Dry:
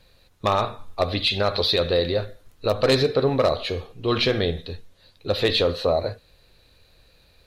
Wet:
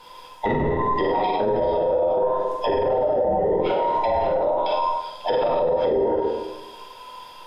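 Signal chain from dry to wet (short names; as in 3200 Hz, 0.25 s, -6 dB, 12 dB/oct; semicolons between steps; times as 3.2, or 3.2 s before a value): band inversion scrambler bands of 1000 Hz; treble ducked by the level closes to 500 Hz, closed at -18.5 dBFS; flutter echo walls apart 8.2 m, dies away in 0.44 s; plate-style reverb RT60 1.1 s, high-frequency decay 0.75×, DRR -3 dB; limiter -21.5 dBFS, peak gain reduction 15.5 dB; gain +7.5 dB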